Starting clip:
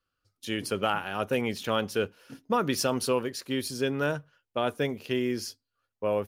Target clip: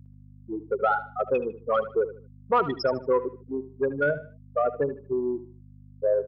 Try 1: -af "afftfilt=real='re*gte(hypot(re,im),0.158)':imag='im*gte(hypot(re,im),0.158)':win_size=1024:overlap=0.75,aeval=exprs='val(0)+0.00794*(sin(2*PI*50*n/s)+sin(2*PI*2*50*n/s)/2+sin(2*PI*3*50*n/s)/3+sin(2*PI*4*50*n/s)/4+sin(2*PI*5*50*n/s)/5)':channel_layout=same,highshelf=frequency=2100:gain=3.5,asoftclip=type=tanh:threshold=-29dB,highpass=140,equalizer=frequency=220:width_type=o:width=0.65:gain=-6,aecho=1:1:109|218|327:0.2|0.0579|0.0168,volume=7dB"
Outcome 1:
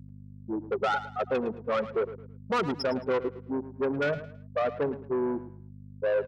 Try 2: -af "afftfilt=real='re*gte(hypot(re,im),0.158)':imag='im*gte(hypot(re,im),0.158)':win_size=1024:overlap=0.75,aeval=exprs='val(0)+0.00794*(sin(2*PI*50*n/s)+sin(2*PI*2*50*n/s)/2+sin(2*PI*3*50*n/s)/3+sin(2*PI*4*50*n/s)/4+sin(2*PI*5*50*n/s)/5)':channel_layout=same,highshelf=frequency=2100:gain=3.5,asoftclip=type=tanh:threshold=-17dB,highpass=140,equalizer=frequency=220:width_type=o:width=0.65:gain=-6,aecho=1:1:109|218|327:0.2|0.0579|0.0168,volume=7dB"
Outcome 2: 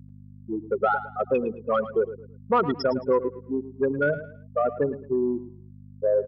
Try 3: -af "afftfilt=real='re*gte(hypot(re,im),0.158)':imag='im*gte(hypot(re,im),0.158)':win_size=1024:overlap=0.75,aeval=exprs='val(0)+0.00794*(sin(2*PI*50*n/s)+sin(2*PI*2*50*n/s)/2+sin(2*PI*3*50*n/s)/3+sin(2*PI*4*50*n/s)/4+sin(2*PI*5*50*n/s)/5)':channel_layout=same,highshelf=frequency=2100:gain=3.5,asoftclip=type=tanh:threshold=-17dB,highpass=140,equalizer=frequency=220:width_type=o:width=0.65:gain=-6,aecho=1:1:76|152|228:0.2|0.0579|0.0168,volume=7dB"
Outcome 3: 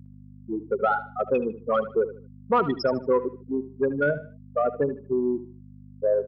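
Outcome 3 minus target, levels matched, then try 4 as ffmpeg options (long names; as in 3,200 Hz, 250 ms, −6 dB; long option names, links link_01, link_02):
250 Hz band +3.5 dB
-af "afftfilt=real='re*gte(hypot(re,im),0.158)':imag='im*gte(hypot(re,im),0.158)':win_size=1024:overlap=0.75,aeval=exprs='val(0)+0.00794*(sin(2*PI*50*n/s)+sin(2*PI*2*50*n/s)/2+sin(2*PI*3*50*n/s)/3+sin(2*PI*4*50*n/s)/4+sin(2*PI*5*50*n/s)/5)':channel_layout=same,highshelf=frequency=2100:gain=3.5,asoftclip=type=tanh:threshold=-17dB,highpass=140,equalizer=frequency=220:width_type=o:width=0.65:gain=-15.5,aecho=1:1:76|152|228:0.2|0.0579|0.0168,volume=7dB"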